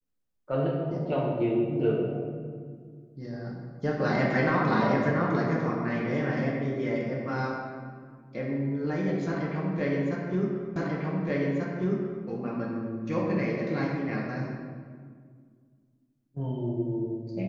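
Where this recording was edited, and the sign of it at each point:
10.76 s: repeat of the last 1.49 s

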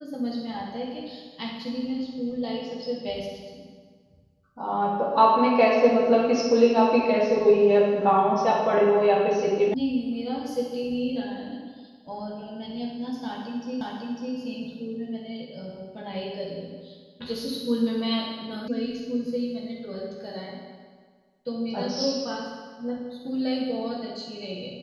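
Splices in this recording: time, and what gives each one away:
9.74 s: sound stops dead
13.81 s: repeat of the last 0.55 s
18.68 s: sound stops dead

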